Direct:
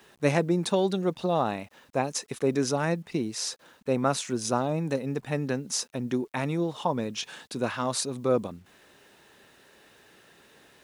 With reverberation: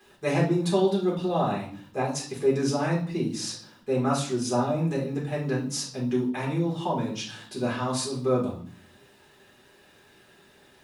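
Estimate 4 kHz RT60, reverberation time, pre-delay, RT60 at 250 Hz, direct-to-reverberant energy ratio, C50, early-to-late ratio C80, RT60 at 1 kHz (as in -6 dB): 0.45 s, 0.50 s, 5 ms, 0.80 s, -5.0 dB, 6.5 dB, 12.0 dB, 0.50 s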